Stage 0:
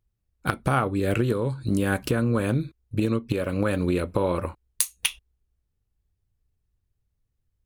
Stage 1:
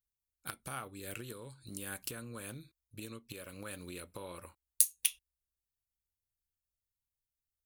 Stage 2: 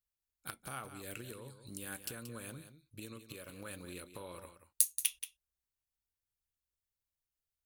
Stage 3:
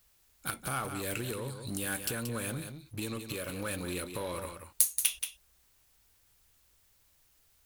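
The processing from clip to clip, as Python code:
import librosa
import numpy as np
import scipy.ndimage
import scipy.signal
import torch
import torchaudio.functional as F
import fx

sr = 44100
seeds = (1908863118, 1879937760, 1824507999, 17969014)

y1 = librosa.effects.preemphasis(x, coef=0.9, zi=[0.0])
y1 = y1 * 10.0 ** (-4.0 / 20.0)
y2 = y1 + 10.0 ** (-11.0 / 20.0) * np.pad(y1, (int(179 * sr / 1000.0), 0))[:len(y1)]
y2 = y2 * 10.0 ** (-2.0 / 20.0)
y3 = fx.power_curve(y2, sr, exponent=0.7)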